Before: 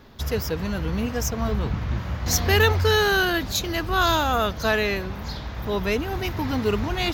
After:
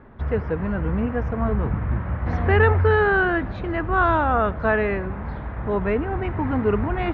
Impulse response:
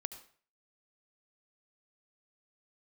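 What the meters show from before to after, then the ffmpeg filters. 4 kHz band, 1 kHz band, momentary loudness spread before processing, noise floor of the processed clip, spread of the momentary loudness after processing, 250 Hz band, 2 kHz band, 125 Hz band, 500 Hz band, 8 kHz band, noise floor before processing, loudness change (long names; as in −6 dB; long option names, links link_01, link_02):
−17.0 dB, +2.5 dB, 10 LU, −32 dBFS, 9 LU, +2.5 dB, +0.5 dB, +2.5 dB, +2.5 dB, below −40 dB, −34 dBFS, +1.0 dB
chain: -filter_complex "[0:a]lowpass=frequency=1900:width=0.5412,lowpass=frequency=1900:width=1.3066,asplit=2[link_01][link_02];[1:a]atrim=start_sample=2205[link_03];[link_02][link_03]afir=irnorm=-1:irlink=0,volume=-8dB[link_04];[link_01][link_04]amix=inputs=2:normalize=0"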